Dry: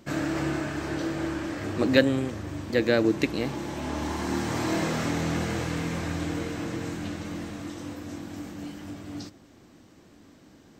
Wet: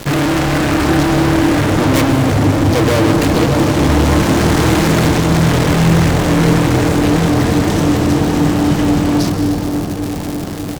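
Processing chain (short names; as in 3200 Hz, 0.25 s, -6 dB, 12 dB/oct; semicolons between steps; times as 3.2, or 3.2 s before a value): self-modulated delay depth 0.53 ms; low shelf 160 Hz +12 dB; comb 6.6 ms, depth 36%; crackle 270/s -38 dBFS; fuzz box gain 39 dB, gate -48 dBFS; dark delay 0.602 s, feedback 67%, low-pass 970 Hz, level -6 dB; on a send at -7 dB: reverb RT60 2.8 s, pre-delay 0.118 s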